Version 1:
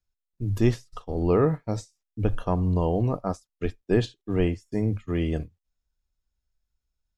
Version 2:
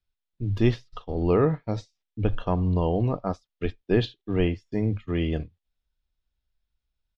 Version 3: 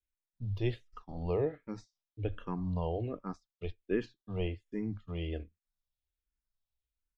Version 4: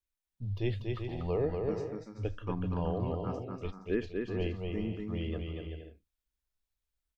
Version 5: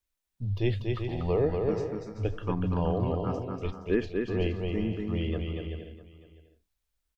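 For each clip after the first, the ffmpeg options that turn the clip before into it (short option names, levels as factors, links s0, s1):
-af "firequalizer=gain_entry='entry(1300,0);entry(3500,5);entry(8100,-19)':delay=0.05:min_phase=1"
-filter_complex "[0:a]asplit=2[s0][s1];[s1]afreqshift=-1.3[s2];[s0][s2]amix=inputs=2:normalize=1,volume=0.398"
-af "aecho=1:1:240|384|470.4|522.2|553.3:0.631|0.398|0.251|0.158|0.1"
-af "aecho=1:1:651:0.119,volume=1.78"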